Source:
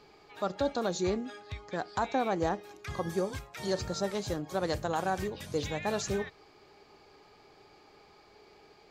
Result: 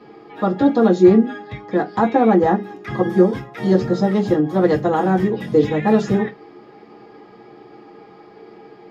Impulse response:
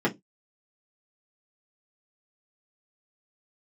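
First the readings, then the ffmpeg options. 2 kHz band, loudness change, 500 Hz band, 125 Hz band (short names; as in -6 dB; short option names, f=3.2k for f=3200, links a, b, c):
+10.0 dB, +16.0 dB, +15.5 dB, +16.0 dB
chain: -filter_complex "[1:a]atrim=start_sample=2205[a];[0:a][a]afir=irnorm=-1:irlink=0,volume=-1dB"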